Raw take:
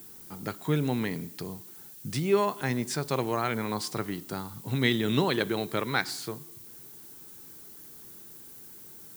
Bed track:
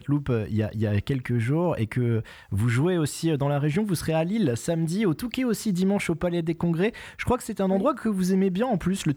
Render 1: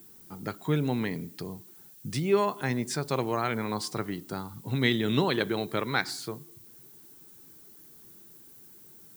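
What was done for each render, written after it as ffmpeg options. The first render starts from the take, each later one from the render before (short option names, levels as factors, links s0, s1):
-af "afftdn=nr=6:nf=-48"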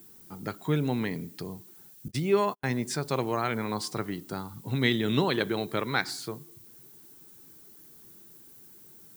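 -filter_complex "[0:a]asettb=1/sr,asplit=3[s0][s1][s2];[s0]atrim=end=2.084[s3];[s1]atrim=start=2.08:end=2.71,asetpts=PTS-STARTPTS,afade=t=in:d=0.004:c=qsin,afade=t=out:st=0.626:d=0.004:c=qsin,agate=range=0.00282:threshold=0.0158:ratio=16:release=100:detection=peak[s4];[s2]atrim=start=2.706[s5];[s3][s4]acrossfade=d=0.004:c1=hsin:c2=qsin[s6];[s6][s5]acrossfade=d=0.004:c1=qsin:c2=hsin"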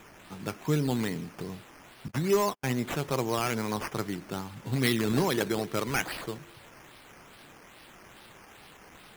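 -af "acrusher=samples=9:mix=1:aa=0.000001:lfo=1:lforange=5.4:lforate=2.4,volume=7.94,asoftclip=hard,volume=0.126"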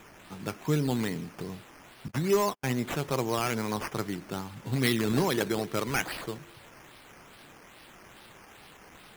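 -af anull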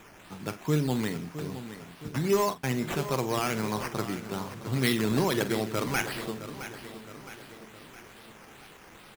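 -filter_complex "[0:a]asplit=2[s0][s1];[s1]adelay=46,volume=0.237[s2];[s0][s2]amix=inputs=2:normalize=0,asplit=2[s3][s4];[s4]aecho=0:1:665|1330|1995|2660|3325:0.251|0.128|0.0653|0.0333|0.017[s5];[s3][s5]amix=inputs=2:normalize=0"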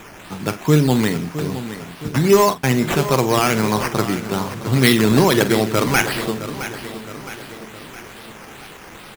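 -af "volume=3.98"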